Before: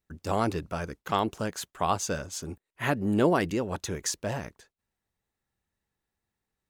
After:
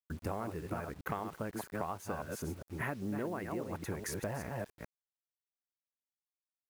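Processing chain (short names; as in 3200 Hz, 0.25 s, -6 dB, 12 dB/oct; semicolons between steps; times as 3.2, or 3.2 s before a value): reverse delay 0.202 s, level -7 dB; band shelf 4800 Hz -13 dB; compressor 12:1, threshold -37 dBFS, peak gain reduction 20 dB; bit-crush 10-bit; gain +2.5 dB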